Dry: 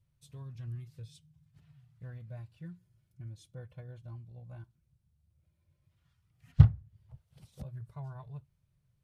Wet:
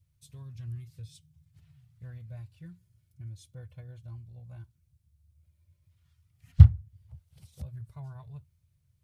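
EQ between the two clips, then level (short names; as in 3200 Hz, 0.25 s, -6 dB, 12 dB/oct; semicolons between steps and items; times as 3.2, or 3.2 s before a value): bell 81 Hz +14.5 dB 0.87 oct; bell 2200 Hz +2.5 dB 0.21 oct; high shelf 3000 Hz +10 dB; -4.0 dB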